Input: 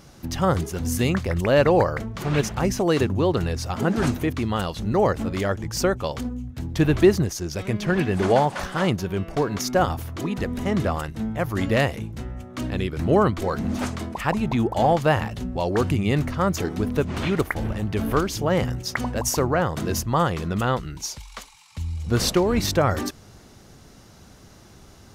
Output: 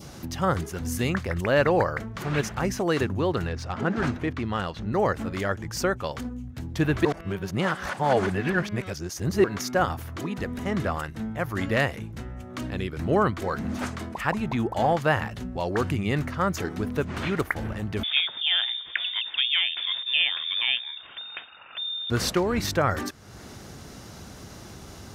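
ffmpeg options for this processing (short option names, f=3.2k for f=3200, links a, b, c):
-filter_complex "[0:a]asettb=1/sr,asplit=3[a][b][c];[a]atrim=end=3.474[d];[b]atrim=start=3.47:end=4.93,asetpts=PTS-STARTPTS,afade=t=in:d=0.004:c=qsin,afade=t=out:st=1.456:d=0.004:c=qsin,adynamicsmooth=sensitivity=3.5:basefreq=4k[e];[c]atrim=start=4.926[f];[d][e]acrossfade=d=0.004:c1=hsin:c2=qsin[g];[g][f]acrossfade=d=0.004:c1=qsin:c2=hsin,asettb=1/sr,asplit=3[h][i][j];[h]atrim=end=18.034[k];[i]atrim=start=18.03:end=22.1,asetpts=PTS-STARTPTS,afade=t=in:d=0.004:c=qsin,afade=t=out:st=4.066:d=0.004:c=qsin,lowpass=f=3.1k:t=q:w=0.5098,lowpass=f=3.1k:t=q:w=0.6013,lowpass=f=3.1k:t=q:w=0.9,lowpass=f=3.1k:t=q:w=2.563,afreqshift=-3700[l];[j]atrim=start=22.096[m];[k][l]acrossfade=d=0.004:c1=hsin:c2=qsin[n];[n][m]acrossfade=d=0.004:c1=qsin:c2=hsin,asplit=3[o][p][q];[o]atrim=end=7.052[r];[p]atrim=start=7.048:end=9.442,asetpts=PTS-STARTPTS,areverse[s];[q]atrim=start=9.438[t];[r][s]acrossfade=d=0.004:c1=hsin:c2=hsin[u];[u][t]acrossfade=d=0.004:c1=hsin:c2=hsin,highpass=48,acompressor=mode=upward:threshold=-27dB:ratio=2.5,adynamicequalizer=threshold=0.0126:dfrequency=1600:dqfactor=1.3:tfrequency=1600:tqfactor=1.3:attack=5:release=100:ratio=0.375:range=3:mode=boostabove:tftype=bell,volume=-4.5dB"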